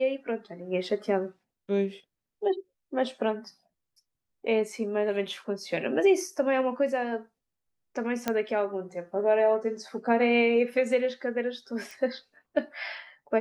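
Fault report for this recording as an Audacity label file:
8.280000	8.280000	click −12 dBFS
11.910000	11.910000	click

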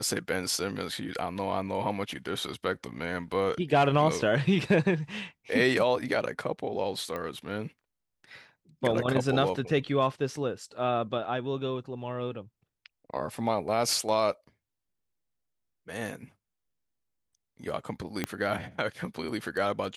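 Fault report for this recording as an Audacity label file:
7.160000	7.160000	click −22 dBFS
18.240000	18.240000	click −14 dBFS

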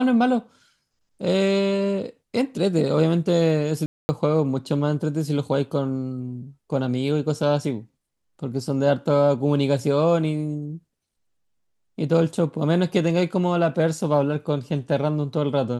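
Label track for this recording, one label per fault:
3.860000	4.090000	drop-out 230 ms

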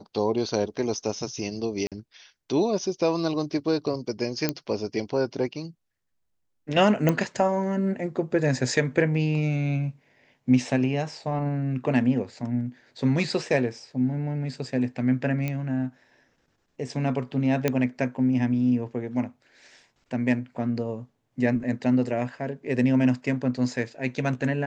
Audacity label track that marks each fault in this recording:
1.870000	1.920000	drop-out 47 ms
4.490000	4.490000	click −9 dBFS
7.090000	7.090000	click −10 dBFS
15.480000	15.480000	click −16 dBFS
17.680000	17.680000	click −9 dBFS

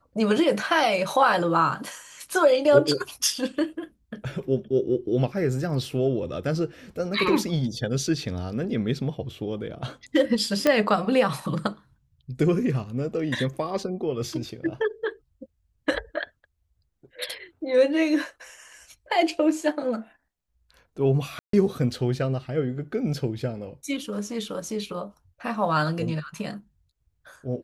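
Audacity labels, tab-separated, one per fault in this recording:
10.670000	10.670000	click −7 dBFS
21.390000	21.530000	drop-out 143 ms

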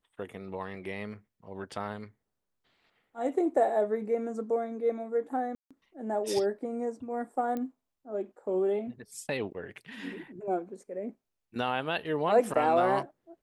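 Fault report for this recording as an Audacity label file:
0.750000	0.750000	drop-out 3 ms
5.550000	5.710000	drop-out 156 ms
7.570000	7.570000	click −23 dBFS

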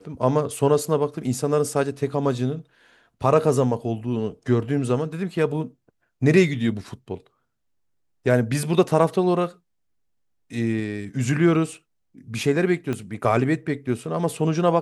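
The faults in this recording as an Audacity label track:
12.930000	12.930000	click −15 dBFS

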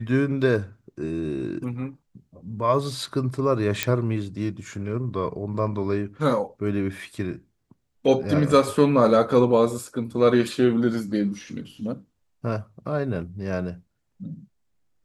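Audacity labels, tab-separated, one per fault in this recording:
3.830000	3.830000	click −4 dBFS

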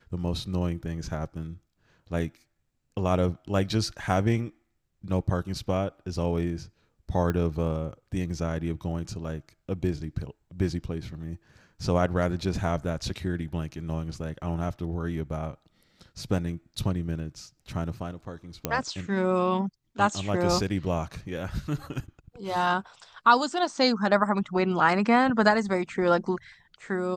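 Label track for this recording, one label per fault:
7.300000	7.300000	click −16 dBFS
18.650000	18.650000	click −10 dBFS

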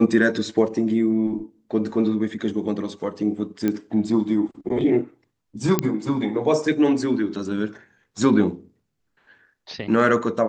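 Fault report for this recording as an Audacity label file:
3.680000	3.680000	click −11 dBFS
5.790000	5.790000	click −5 dBFS

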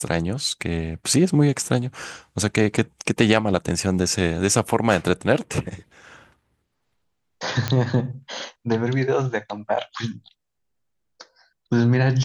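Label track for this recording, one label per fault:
7.680000	7.680000	click −8 dBFS

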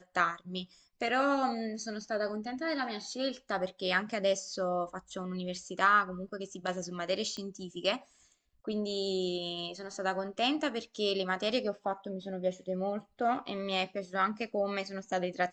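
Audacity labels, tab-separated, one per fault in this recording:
7.370000	7.370000	click −27 dBFS

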